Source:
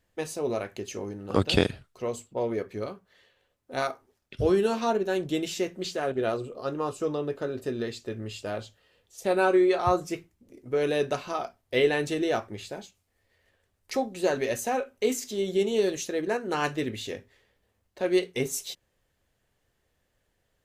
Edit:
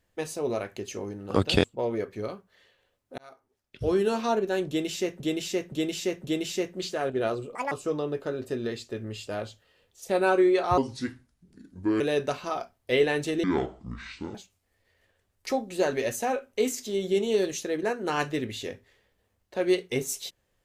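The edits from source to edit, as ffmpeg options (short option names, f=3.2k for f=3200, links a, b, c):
-filter_complex "[0:a]asplit=12[a][b][c][d][e][f][g][h][i][j][k][l];[a]atrim=end=1.642[m];[b]atrim=start=2.218:end=3.76,asetpts=PTS-STARTPTS,afade=t=out:st=1.538:d=0.004:c=hsin[n];[c]atrim=start=3.76:end=5.782,asetpts=PTS-STARTPTS,afade=t=in:d=0.94[o];[d]atrim=start=5.258:end=5.782[p];[e]atrim=start=5.258:end=5.782[q];[f]atrim=start=5.258:end=6.574[r];[g]atrim=start=6.57:end=6.87,asetpts=PTS-STARTPTS,asetrate=80262,aresample=44100,atrim=end_sample=7269,asetpts=PTS-STARTPTS[s];[h]atrim=start=6.866:end=9.934[t];[i]atrim=start=9.93:end=10.84,asetpts=PTS-STARTPTS,asetrate=32634,aresample=44100,atrim=end_sample=54231,asetpts=PTS-STARTPTS[u];[j]atrim=start=10.836:end=12.274[v];[k]atrim=start=12.27:end=12.79,asetpts=PTS-STARTPTS,asetrate=25137,aresample=44100[w];[l]atrim=start=12.786[x];[n][o]concat=n=2:v=0:a=1[y];[m][y]acrossfade=d=0.004:c1=hsin:c2=hsin[z];[z][p]acrossfade=d=0.004:c1=hsin:c2=hsin[aa];[aa][q]acrossfade=d=0.004:c1=hsin:c2=hsin[ab];[ab][r]acrossfade=d=0.004:c1=hsin:c2=hsin[ac];[ac][s]acrossfade=d=0.004:c1=hsin:c2=hsin[ad];[ad][t]acrossfade=d=0.004:c1=hsin:c2=hsin[ae];[ae][u]acrossfade=d=0.004:c1=hsin:c2=hsin[af];[af][v]acrossfade=d=0.004:c1=hsin:c2=hsin[ag];[ag][w]acrossfade=d=0.004:c1=hsin:c2=hsin[ah];[ah][x]acrossfade=d=0.004:c1=hsin:c2=hsin"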